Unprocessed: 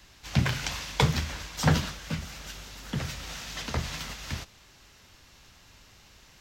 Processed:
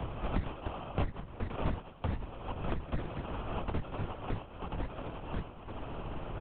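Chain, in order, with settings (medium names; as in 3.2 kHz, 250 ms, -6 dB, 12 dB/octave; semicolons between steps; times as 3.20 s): reverb removal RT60 1.2 s; dynamic bell 2 kHz, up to +4 dB, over -46 dBFS, Q 1.5; sample-and-hold 23×; distance through air 210 m; on a send: delay 1050 ms -9 dB; on the sum: LPC vocoder at 8 kHz whisper; three bands compressed up and down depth 100%; trim -2.5 dB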